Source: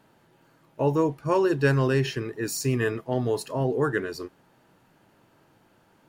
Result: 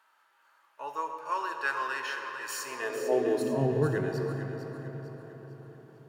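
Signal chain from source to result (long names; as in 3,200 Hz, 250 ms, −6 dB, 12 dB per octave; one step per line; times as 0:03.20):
high-pass filter 100 Hz
feedback echo with a high-pass in the loop 450 ms, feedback 40%, level −9 dB
harmonic and percussive parts rebalanced percussive −6 dB
convolution reverb RT60 5.1 s, pre-delay 25 ms, DRR 4.5 dB
high-pass filter sweep 1,200 Hz → 130 Hz, 0:02.60–0:03.79
level −3.5 dB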